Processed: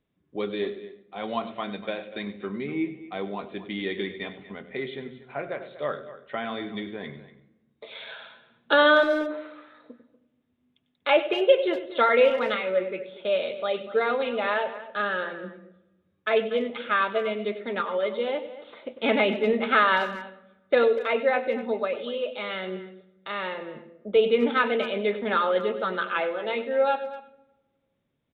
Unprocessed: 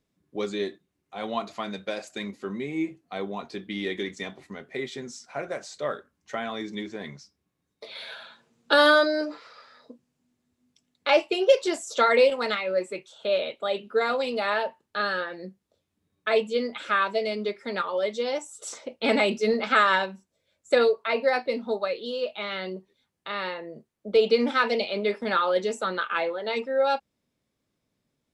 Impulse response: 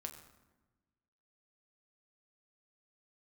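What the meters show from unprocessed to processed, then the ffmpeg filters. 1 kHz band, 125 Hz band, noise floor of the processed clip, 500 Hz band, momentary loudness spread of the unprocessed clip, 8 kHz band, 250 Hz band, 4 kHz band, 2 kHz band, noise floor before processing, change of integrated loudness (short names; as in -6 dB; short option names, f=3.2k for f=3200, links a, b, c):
0.0 dB, n/a, -73 dBFS, +0.5 dB, 16 LU, under -20 dB, +0.5 dB, -2.0 dB, +0.5 dB, -80 dBFS, 0.0 dB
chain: -filter_complex "[0:a]asplit=2[a][b];[b]equalizer=f=125:t=o:w=1:g=7,equalizer=f=500:t=o:w=1:g=4,equalizer=f=1k:t=o:w=1:g=-9[c];[1:a]atrim=start_sample=2205,adelay=97[d];[c][d]afir=irnorm=-1:irlink=0,volume=-8.5dB[e];[a][e]amix=inputs=2:normalize=0,aresample=8000,aresample=44100,asplit=2[f][g];[g]adelay=240,highpass=300,lowpass=3.4k,asoftclip=type=hard:threshold=-15dB,volume=-15dB[h];[f][h]amix=inputs=2:normalize=0"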